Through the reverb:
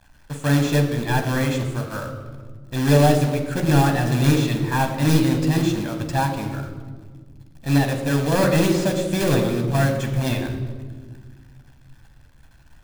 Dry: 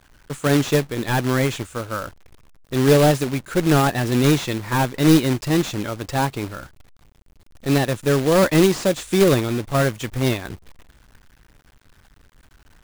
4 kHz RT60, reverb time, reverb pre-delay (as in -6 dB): 0.95 s, 1.6 s, 13 ms